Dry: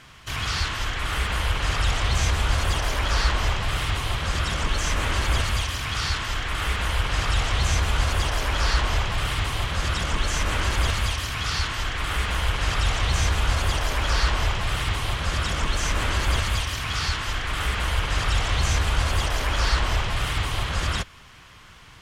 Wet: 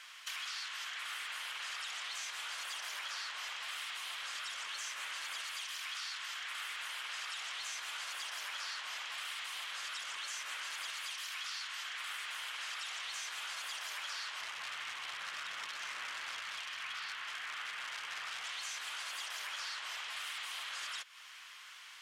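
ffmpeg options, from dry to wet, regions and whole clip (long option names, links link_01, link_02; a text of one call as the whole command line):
ffmpeg -i in.wav -filter_complex "[0:a]asettb=1/sr,asplit=3[link_01][link_02][link_03];[link_01]atrim=end=14.414[link_04];[link_02]atrim=start=14.41:end=18.45,asetpts=PTS-STARTPTS,afade=type=in:duration=0.004:curve=qsin,afade=type=out:start_time=4.036:duration=0.004:curve=qsin,bass=frequency=250:gain=11,treble=frequency=4000:gain=-13,acrusher=bits=5:mode=log:mix=0:aa=0.000001,highpass=110,lowpass=6200[link_05];[link_03]atrim=start=18.446[link_06];[link_04][link_05]acrossfade=duration=0.004:curve1=hsin:curve2=qsin[link_07];[link_07][link_06]acrossfade=duration=0.004:curve1=qsin:curve2=hsin,highpass=1500,acompressor=threshold=-39dB:ratio=6,volume=-1dB" out.wav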